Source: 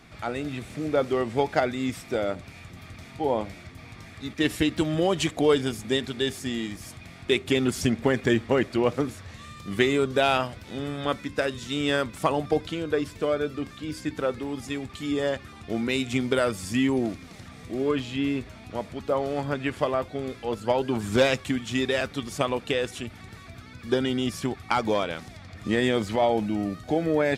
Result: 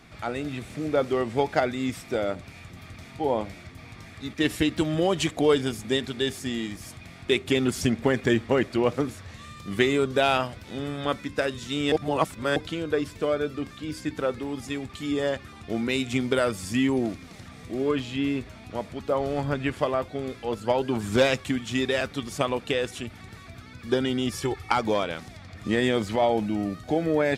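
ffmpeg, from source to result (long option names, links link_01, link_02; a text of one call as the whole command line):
ffmpeg -i in.wav -filter_complex "[0:a]asettb=1/sr,asplit=3[link_01][link_02][link_03];[link_01]atrim=end=19.204[link_04];[link_02]atrim=start=19.2:end=19.72,asetpts=PTS-STARTPTS,afade=type=in:duration=0.004:curve=qsin,afade=type=out:start_time=0.516:duration=0.004:curve=qsin,lowshelf=frequency=86:gain=11.5[link_05];[link_03]atrim=start=19.716[link_06];[link_04][link_05]acrossfade=duration=0.004:curve1=hsin:curve2=qsin[link_07];[link_07][link_06]acrossfade=duration=0.004:curve1=qsin:curve2=hsin,asettb=1/sr,asplit=3[link_08][link_09][link_10];[link_08]atrim=end=24.324[link_11];[link_09]atrim=start=24.32:end=24.72,asetpts=PTS-STARTPTS,afade=type=in:duration=0.004:curve=qsin,afade=type=out:start_time=0.396:duration=0.004:curve=qsin,aecho=1:1:2.3:0.83,atrim=end_sample=17640[link_12];[link_10]atrim=start=24.716[link_13];[link_11][link_12]acrossfade=duration=0.004:curve1=hsin:curve2=qsin[link_14];[link_14][link_13]acrossfade=duration=0.004:curve1=qsin:curve2=hsin,asplit=3[link_15][link_16][link_17];[link_15]atrim=end=11.922[link_18];[link_16]atrim=start=11.918:end=12.562,asetpts=PTS-STARTPTS,areverse[link_19];[link_17]atrim=start=12.558[link_20];[link_18][link_19]acrossfade=duration=0.004:curve1=hsin:curve2=hsin[link_21];[link_21][link_20]acrossfade=duration=0.004:curve1=hsin:curve2=hsin" out.wav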